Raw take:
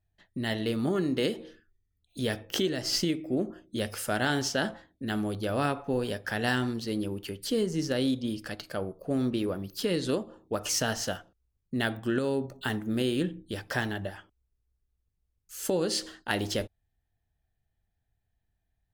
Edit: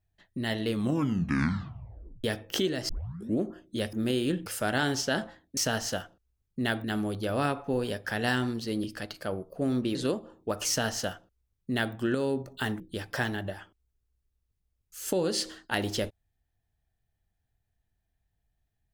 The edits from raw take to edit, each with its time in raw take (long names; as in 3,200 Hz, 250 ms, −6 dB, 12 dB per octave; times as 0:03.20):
0:00.68: tape stop 1.56 s
0:02.89: tape start 0.51 s
0:07.04–0:08.33: remove
0:09.44–0:09.99: remove
0:10.72–0:11.99: duplicate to 0:05.04
0:12.84–0:13.37: move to 0:03.93